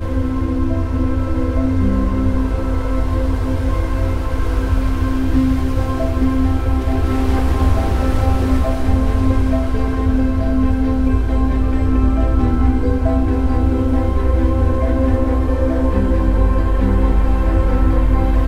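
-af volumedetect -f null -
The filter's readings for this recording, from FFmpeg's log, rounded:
mean_volume: -14.6 dB
max_volume: -2.8 dB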